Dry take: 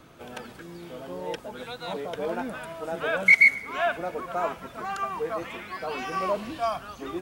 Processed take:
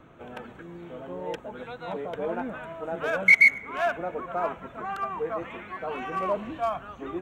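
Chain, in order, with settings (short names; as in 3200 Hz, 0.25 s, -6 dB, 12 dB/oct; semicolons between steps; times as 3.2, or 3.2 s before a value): Wiener smoothing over 9 samples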